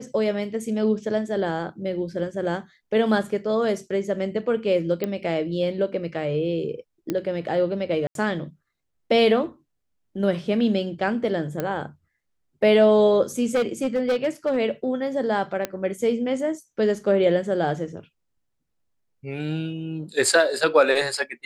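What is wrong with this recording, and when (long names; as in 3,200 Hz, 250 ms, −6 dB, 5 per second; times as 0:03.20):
0:05.04: click −13 dBFS
0:07.10: click −13 dBFS
0:08.07–0:08.15: drop-out 82 ms
0:11.60: click −13 dBFS
0:13.55–0:14.58: clipping −17.5 dBFS
0:15.65: click −11 dBFS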